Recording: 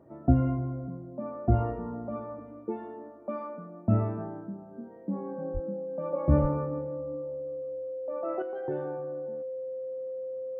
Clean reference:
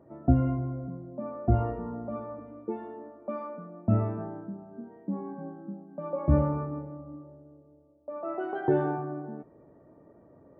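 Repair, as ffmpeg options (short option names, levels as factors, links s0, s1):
-filter_complex "[0:a]bandreject=f=520:w=30,asplit=3[s0][s1][s2];[s0]afade=t=out:st=5.53:d=0.02[s3];[s1]highpass=f=140:w=0.5412,highpass=f=140:w=1.3066,afade=t=in:st=5.53:d=0.02,afade=t=out:st=5.65:d=0.02[s4];[s2]afade=t=in:st=5.65:d=0.02[s5];[s3][s4][s5]amix=inputs=3:normalize=0,asplit=3[s6][s7][s8];[s6]afade=t=out:st=6.41:d=0.02[s9];[s7]highpass=f=140:w=0.5412,highpass=f=140:w=1.3066,afade=t=in:st=6.41:d=0.02,afade=t=out:st=6.53:d=0.02[s10];[s8]afade=t=in:st=6.53:d=0.02[s11];[s9][s10][s11]amix=inputs=3:normalize=0,asetnsamples=n=441:p=0,asendcmd='8.42 volume volume 10dB',volume=1"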